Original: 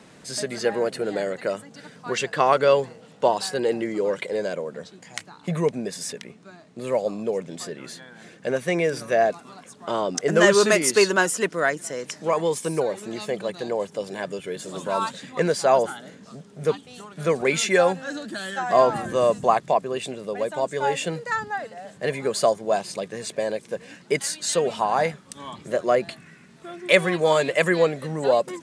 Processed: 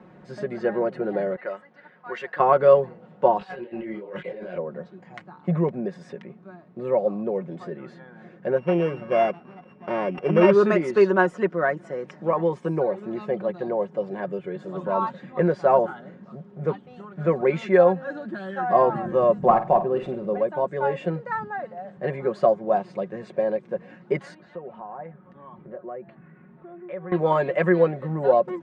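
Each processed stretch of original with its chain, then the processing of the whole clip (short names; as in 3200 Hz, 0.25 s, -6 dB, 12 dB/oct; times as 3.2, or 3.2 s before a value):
1.36–2.4 HPF 1100 Hz 6 dB/oct + low-pass opened by the level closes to 2900 Hz, open at -27.5 dBFS + bell 1900 Hz +6 dB 0.36 oct
3.39–4.58 bell 2700 Hz +12 dB 1.4 oct + negative-ratio compressor -32 dBFS + detuned doubles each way 43 cents
8.58–10.51 sample sorter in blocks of 16 samples + high shelf 5500 Hz -11.5 dB
19.42–20.38 CVSD 64 kbps + low shelf 380 Hz +5 dB + flutter echo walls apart 8.7 m, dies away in 0.29 s
24.34–27.12 LPF 2100 Hz + compressor 2:1, threshold -47 dBFS
whole clip: LPF 1300 Hz 12 dB/oct; comb 5.5 ms, depth 57%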